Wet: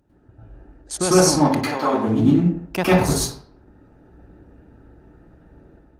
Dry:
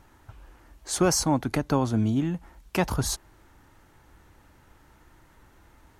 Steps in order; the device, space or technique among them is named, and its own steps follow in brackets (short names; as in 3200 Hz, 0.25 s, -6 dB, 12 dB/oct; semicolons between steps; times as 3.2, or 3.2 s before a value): Wiener smoothing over 41 samples; high shelf 5500 Hz +4 dB; 1.53–2.07 HPF 730 Hz -> 240 Hz 12 dB/oct; bell 4200 Hz +2.5 dB 1.8 oct; far-field microphone of a smart speaker (reverb RT60 0.65 s, pre-delay 95 ms, DRR -9 dB; HPF 110 Hz 6 dB/oct; AGC gain up to 7.5 dB; gain -1.5 dB; Opus 32 kbps 48000 Hz)